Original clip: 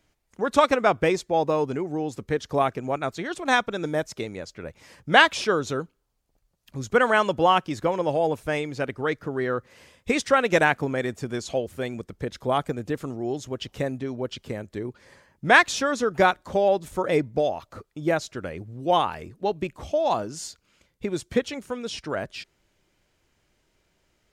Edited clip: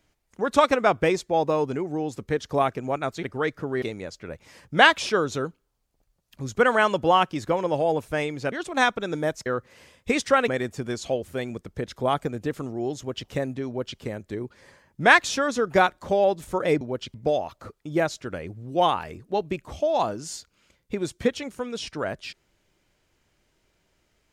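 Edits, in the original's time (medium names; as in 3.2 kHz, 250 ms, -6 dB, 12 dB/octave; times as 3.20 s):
3.23–4.17 s: swap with 8.87–9.46 s
10.48–10.92 s: delete
14.11–14.44 s: copy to 17.25 s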